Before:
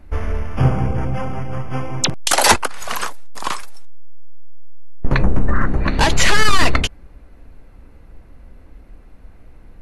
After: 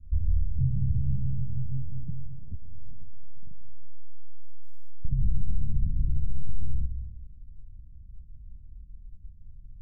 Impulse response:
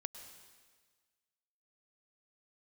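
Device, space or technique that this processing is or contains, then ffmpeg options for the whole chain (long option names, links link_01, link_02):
club heard from the street: -filter_complex "[0:a]alimiter=limit=-11dB:level=0:latency=1:release=126,lowpass=frequency=150:width=0.5412,lowpass=frequency=150:width=1.3066[link_01];[1:a]atrim=start_sample=2205[link_02];[link_01][link_02]afir=irnorm=-1:irlink=0"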